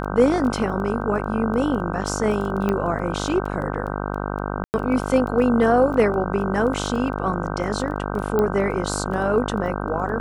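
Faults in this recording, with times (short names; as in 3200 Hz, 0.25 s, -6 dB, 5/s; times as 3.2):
buzz 50 Hz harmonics 31 -27 dBFS
crackle 10/s -29 dBFS
2.69 pop -11 dBFS
4.64–4.74 gap 99 ms
8.39 pop -10 dBFS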